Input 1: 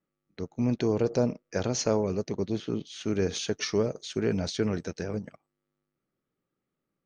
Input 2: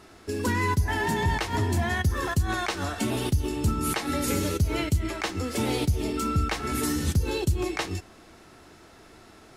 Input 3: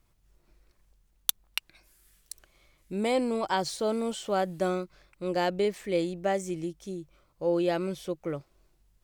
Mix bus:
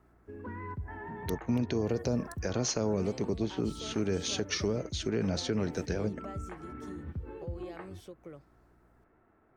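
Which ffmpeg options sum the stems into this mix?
-filter_complex "[0:a]adelay=900,volume=1.19[s0];[1:a]lowpass=f=1800:w=0.5412,lowpass=f=1800:w=1.3066,volume=0.178[s1];[2:a]acompressor=threshold=0.0178:ratio=5,aeval=exprs='val(0)+0.00158*(sin(2*PI*60*n/s)+sin(2*PI*2*60*n/s)/2+sin(2*PI*3*60*n/s)/3+sin(2*PI*4*60*n/s)/4+sin(2*PI*5*60*n/s)/5)':c=same,volume=0.355[s2];[s0][s1][s2]amix=inputs=3:normalize=0,acrossover=split=300|3000[s3][s4][s5];[s4]acompressor=threshold=0.0501:ratio=6[s6];[s3][s6][s5]amix=inputs=3:normalize=0,alimiter=limit=0.1:level=0:latency=1:release=236"

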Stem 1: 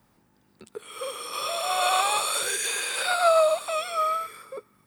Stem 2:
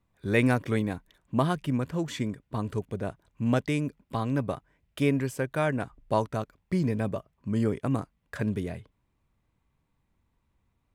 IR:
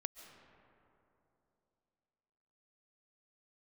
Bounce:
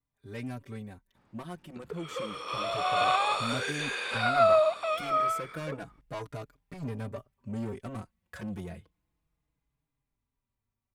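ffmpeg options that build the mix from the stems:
-filter_complex "[0:a]lowpass=3200,adelay=1150,volume=0.794[s0];[1:a]dynaudnorm=f=380:g=11:m=4.22,asoftclip=type=tanh:threshold=0.119,asplit=2[s1][s2];[s2]adelay=4.5,afreqshift=-0.3[s3];[s1][s3]amix=inputs=2:normalize=1,volume=0.266[s4];[s0][s4]amix=inputs=2:normalize=0,highshelf=f=6400:g=4"

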